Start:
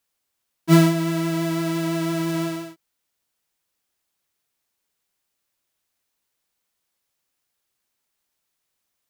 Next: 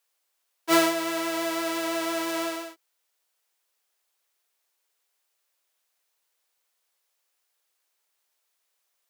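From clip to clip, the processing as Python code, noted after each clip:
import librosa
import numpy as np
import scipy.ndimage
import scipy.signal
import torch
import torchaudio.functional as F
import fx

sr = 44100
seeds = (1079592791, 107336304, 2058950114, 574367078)

y = scipy.signal.sosfilt(scipy.signal.butter(4, 410.0, 'highpass', fs=sr, output='sos'), x)
y = y * librosa.db_to_amplitude(1.5)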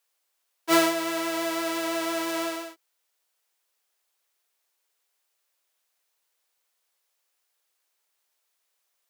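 y = x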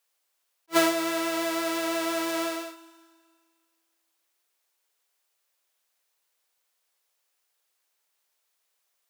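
y = fx.rev_schroeder(x, sr, rt60_s=1.9, comb_ms=31, drr_db=15.0)
y = fx.attack_slew(y, sr, db_per_s=550.0)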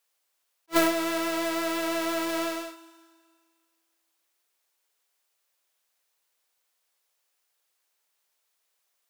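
y = fx.tracing_dist(x, sr, depth_ms=0.33)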